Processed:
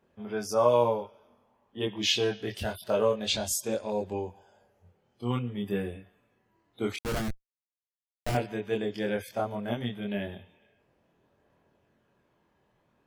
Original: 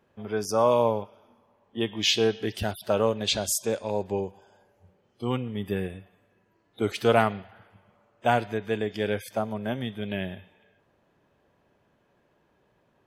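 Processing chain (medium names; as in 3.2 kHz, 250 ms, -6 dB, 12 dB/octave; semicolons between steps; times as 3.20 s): 6.96–8.35 s: Schmitt trigger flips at -19.5 dBFS; chorus voices 2, 0.26 Hz, delay 24 ms, depth 1.1 ms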